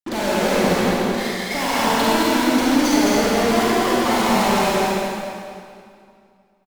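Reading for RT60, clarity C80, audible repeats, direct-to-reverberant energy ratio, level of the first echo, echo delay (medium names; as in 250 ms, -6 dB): 2.3 s, -4.5 dB, 1, -8.0 dB, -2.5 dB, 210 ms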